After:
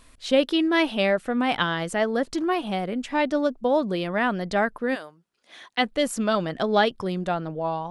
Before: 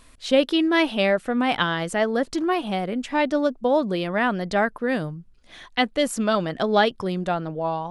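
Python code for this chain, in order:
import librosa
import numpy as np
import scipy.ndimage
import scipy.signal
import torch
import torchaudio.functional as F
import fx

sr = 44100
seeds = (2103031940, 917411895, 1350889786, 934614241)

y = fx.highpass(x, sr, hz=fx.line((4.94, 810.0), (5.83, 200.0)), slope=12, at=(4.94, 5.83), fade=0.02)
y = F.gain(torch.from_numpy(y), -1.5).numpy()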